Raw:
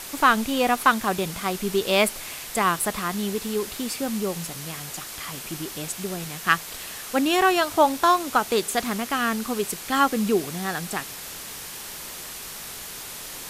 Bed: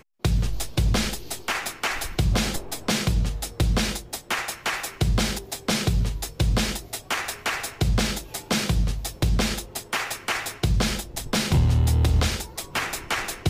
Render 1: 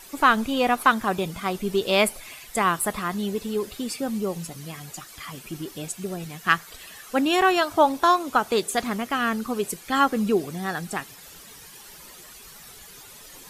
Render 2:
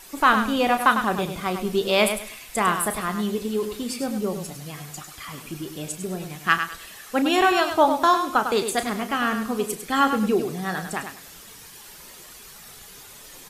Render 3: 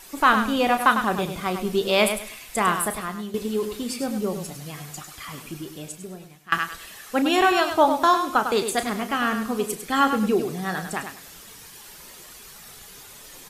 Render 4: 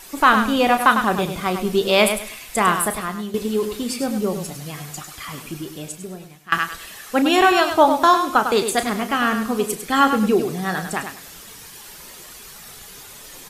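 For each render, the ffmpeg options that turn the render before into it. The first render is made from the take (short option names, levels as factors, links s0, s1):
-af "afftdn=nr=12:nf=-37"
-filter_complex "[0:a]asplit=2[s0][s1];[s1]adelay=33,volume=0.266[s2];[s0][s2]amix=inputs=2:normalize=0,aecho=1:1:101|202|303:0.398|0.0995|0.0249"
-filter_complex "[0:a]asplit=3[s0][s1][s2];[s0]atrim=end=3.34,asetpts=PTS-STARTPTS,afade=t=out:st=2.8:d=0.54:silence=0.298538[s3];[s1]atrim=start=3.34:end=6.52,asetpts=PTS-STARTPTS,afade=t=in:d=0.004:c=hsin:silence=0.298538,afade=t=out:st=2.03:d=1.15:silence=0.0794328[s4];[s2]atrim=start=6.52,asetpts=PTS-STARTPTS,afade=t=in:d=0.004:c=hsin:silence=0.0794328[s5];[s3][s4][s5]concat=n=3:v=0:a=1"
-af "volume=1.58,alimiter=limit=0.708:level=0:latency=1"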